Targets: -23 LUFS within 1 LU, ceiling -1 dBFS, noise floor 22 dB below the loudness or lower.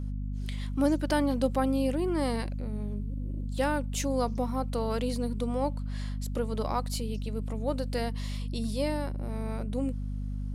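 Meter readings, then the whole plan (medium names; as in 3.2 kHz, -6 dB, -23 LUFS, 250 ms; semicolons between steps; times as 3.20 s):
hum 50 Hz; highest harmonic 250 Hz; hum level -31 dBFS; loudness -31.5 LUFS; peak level -14.0 dBFS; loudness target -23.0 LUFS
-> de-hum 50 Hz, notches 5; trim +8.5 dB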